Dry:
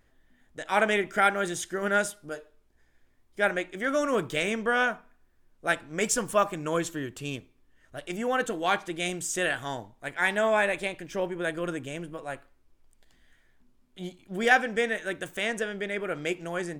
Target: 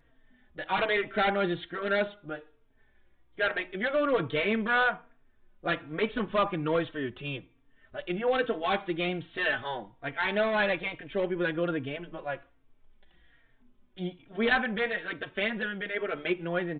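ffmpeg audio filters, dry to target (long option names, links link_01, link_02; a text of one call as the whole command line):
ffmpeg -i in.wav -filter_complex "[0:a]aresample=8000,volume=22.5dB,asoftclip=hard,volume=-22.5dB,aresample=44100,asplit=2[link_01][link_02];[link_02]adelay=3.8,afreqshift=-1.2[link_03];[link_01][link_03]amix=inputs=2:normalize=1,volume=4dB" out.wav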